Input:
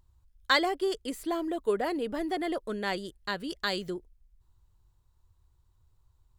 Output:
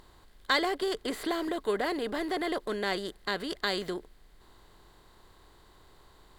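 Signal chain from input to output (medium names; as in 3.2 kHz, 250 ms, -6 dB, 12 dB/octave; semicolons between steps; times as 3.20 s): spectral levelling over time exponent 0.6; 0.82–1.49 s: three bands compressed up and down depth 70%; trim -3.5 dB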